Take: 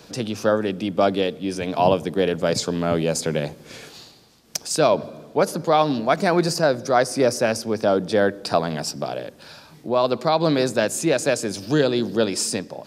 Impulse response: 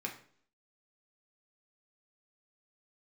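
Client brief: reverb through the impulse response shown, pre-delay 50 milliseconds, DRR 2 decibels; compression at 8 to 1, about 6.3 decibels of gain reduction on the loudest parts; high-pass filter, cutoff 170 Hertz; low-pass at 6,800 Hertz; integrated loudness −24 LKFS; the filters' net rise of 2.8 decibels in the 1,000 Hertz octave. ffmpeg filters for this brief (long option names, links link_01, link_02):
-filter_complex "[0:a]highpass=170,lowpass=6800,equalizer=frequency=1000:width_type=o:gain=4,acompressor=threshold=-17dB:ratio=8,asplit=2[link_01][link_02];[1:a]atrim=start_sample=2205,adelay=50[link_03];[link_02][link_03]afir=irnorm=-1:irlink=0,volume=-3.5dB[link_04];[link_01][link_04]amix=inputs=2:normalize=0,volume=-1.5dB"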